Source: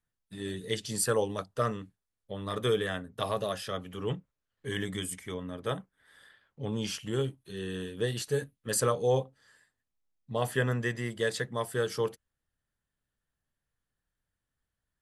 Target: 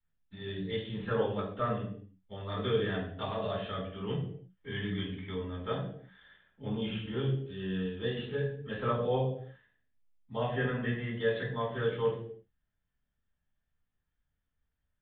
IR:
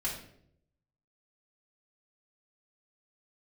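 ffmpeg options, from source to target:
-filter_complex "[0:a]acrossover=split=240|1300[a][b][c];[c]asoftclip=type=tanh:threshold=-31dB[d];[a][b][d]amix=inputs=3:normalize=0[e];[1:a]atrim=start_sample=2205,afade=t=out:st=0.44:d=0.01,atrim=end_sample=19845,asetrate=48510,aresample=44100[f];[e][f]afir=irnorm=-1:irlink=0,aresample=8000,aresample=44100,volume=-4dB"

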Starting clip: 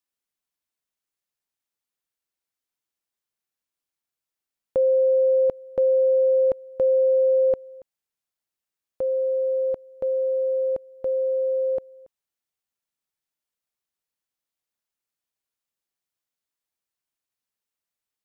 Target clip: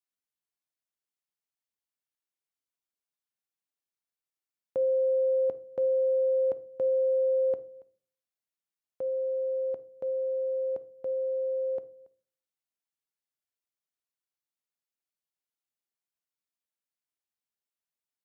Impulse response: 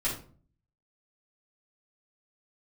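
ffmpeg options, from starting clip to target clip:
-filter_complex "[0:a]highpass=100,asplit=2[a][b];[1:a]atrim=start_sample=2205,asetrate=48510,aresample=44100[c];[b][c]afir=irnorm=-1:irlink=0,volume=-18dB[d];[a][d]amix=inputs=2:normalize=0,volume=-8.5dB"

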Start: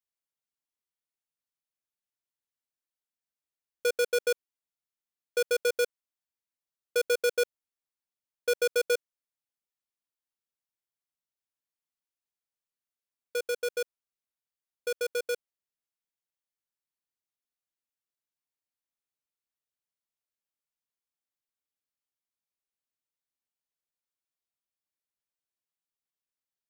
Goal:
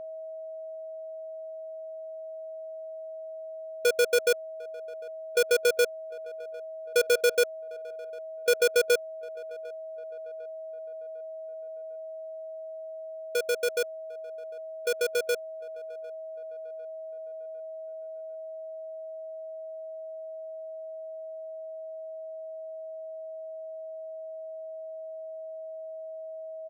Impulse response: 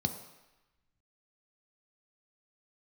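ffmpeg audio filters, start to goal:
-filter_complex "[0:a]asuperstop=centerf=1200:order=12:qfactor=5.5,aeval=exprs='val(0)+0.01*sin(2*PI*640*n/s)':c=same,asplit=2[a][b];[b]adelay=751,lowpass=f=2.2k:p=1,volume=-23dB,asplit=2[c][d];[d]adelay=751,lowpass=f=2.2k:p=1,volume=0.53,asplit=2[e][f];[f]adelay=751,lowpass=f=2.2k:p=1,volume=0.53,asplit=2[g][h];[h]adelay=751,lowpass=f=2.2k:p=1,volume=0.53[i];[a][c][e][g][i]amix=inputs=5:normalize=0,volume=3.5dB"

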